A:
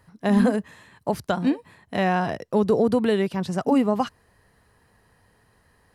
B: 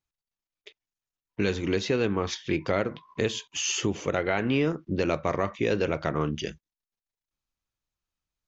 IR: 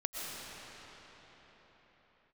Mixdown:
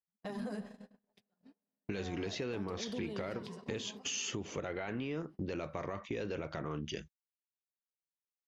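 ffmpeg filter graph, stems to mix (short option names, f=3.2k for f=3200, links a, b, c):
-filter_complex "[0:a]equalizer=f=5k:w=2.8:g=9.5,alimiter=limit=-19.5dB:level=0:latency=1:release=23,flanger=delay=4.4:depth=7.2:regen=-1:speed=0.67:shape=sinusoidal,afade=t=out:st=0.64:d=0.33:silence=0.266073,afade=t=in:st=1.77:d=0.7:silence=0.298538,afade=t=out:st=3.29:d=0.25:silence=0.354813,asplit=2[a][b];[b]volume=-8.5dB[c];[1:a]alimiter=limit=-18.5dB:level=0:latency=1:release=10,adelay=500,volume=-3dB[d];[2:a]atrim=start_sample=2205[e];[c][e]afir=irnorm=-1:irlink=0[f];[a][d][f]amix=inputs=3:normalize=0,agate=range=-37dB:threshold=-44dB:ratio=16:detection=peak,acompressor=threshold=-36dB:ratio=4"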